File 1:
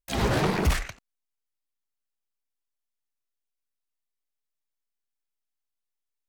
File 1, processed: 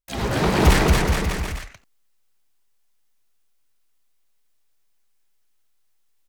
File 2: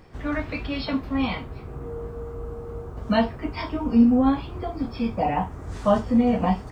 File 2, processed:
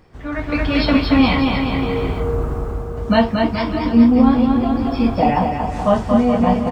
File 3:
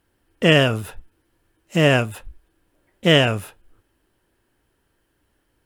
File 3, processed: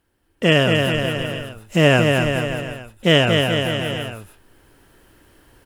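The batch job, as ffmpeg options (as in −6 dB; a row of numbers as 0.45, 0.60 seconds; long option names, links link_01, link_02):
-af "aecho=1:1:230|425.5|591.7|732.9|853:0.631|0.398|0.251|0.158|0.1,dynaudnorm=framelen=160:gausssize=7:maxgain=14.5dB,volume=-1dB"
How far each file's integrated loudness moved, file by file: +6.0, +7.0, 0.0 LU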